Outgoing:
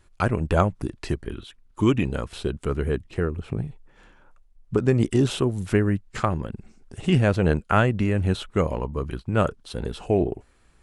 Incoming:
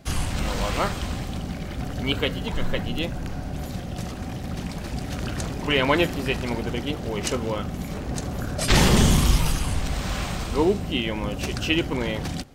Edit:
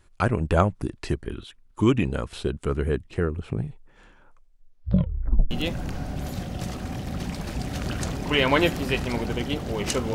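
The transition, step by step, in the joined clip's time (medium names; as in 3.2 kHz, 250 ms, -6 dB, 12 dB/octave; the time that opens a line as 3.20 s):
outgoing
4.27 s: tape stop 1.24 s
5.51 s: go over to incoming from 2.88 s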